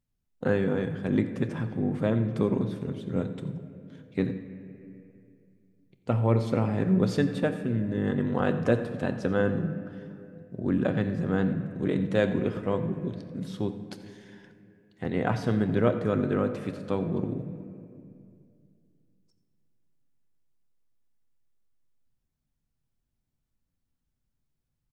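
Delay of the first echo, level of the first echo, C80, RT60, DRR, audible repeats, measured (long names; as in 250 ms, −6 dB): 88 ms, −17.5 dB, 10.5 dB, 2.4 s, 7.0 dB, 1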